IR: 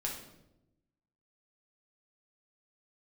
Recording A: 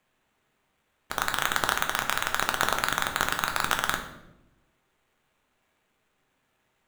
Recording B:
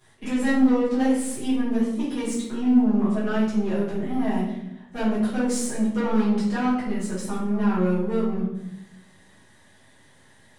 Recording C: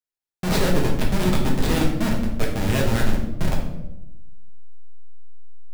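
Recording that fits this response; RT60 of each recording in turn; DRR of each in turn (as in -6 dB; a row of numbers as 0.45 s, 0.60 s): C; 0.90 s, 0.90 s, 0.90 s; 3.5 dB, -11.5 dB, -2.0 dB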